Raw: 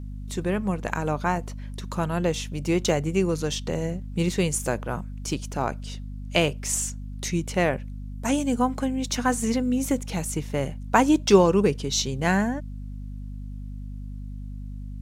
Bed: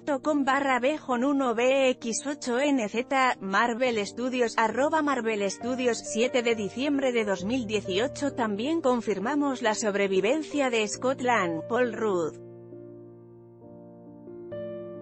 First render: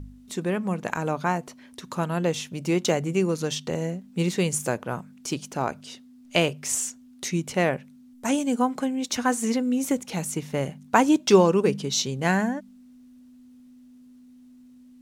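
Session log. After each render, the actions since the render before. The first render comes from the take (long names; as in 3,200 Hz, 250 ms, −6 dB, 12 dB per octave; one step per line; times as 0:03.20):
hum removal 50 Hz, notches 4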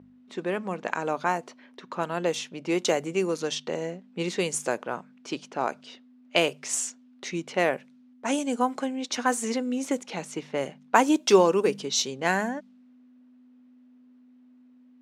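high-pass filter 300 Hz 12 dB per octave
low-pass that shuts in the quiet parts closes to 2,100 Hz, open at −20.5 dBFS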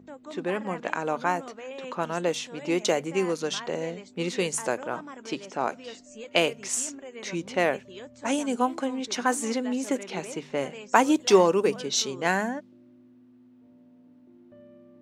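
mix in bed −16.5 dB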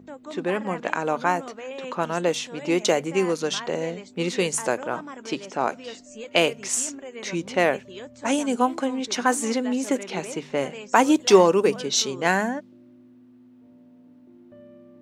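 level +3.5 dB
brickwall limiter −3 dBFS, peak gain reduction 3 dB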